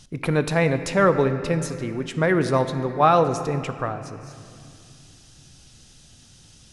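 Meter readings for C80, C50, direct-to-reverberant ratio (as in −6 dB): 10.5 dB, 10.0 dB, 9.0 dB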